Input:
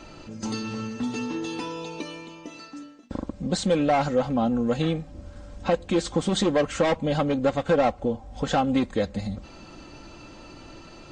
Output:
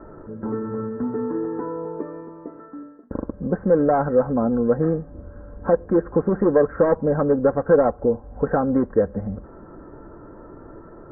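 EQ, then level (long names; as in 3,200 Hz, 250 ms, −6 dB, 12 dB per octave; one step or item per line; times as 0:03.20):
Butterworth low-pass 1,700 Hz 72 dB per octave
parametric band 430 Hz +9.5 dB 0.4 octaves
notch filter 780 Hz, Q 12
+2.0 dB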